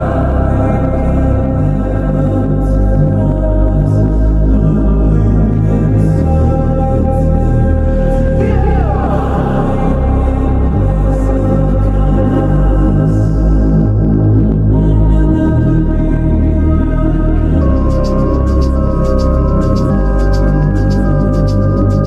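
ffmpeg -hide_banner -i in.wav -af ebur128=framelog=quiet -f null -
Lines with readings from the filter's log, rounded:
Integrated loudness:
  I:         -12.3 LUFS
  Threshold: -22.3 LUFS
Loudness range:
  LRA:         1.7 LU
  Threshold: -32.3 LUFS
  LRA low:   -13.1 LUFS
  LRA high:  -11.3 LUFS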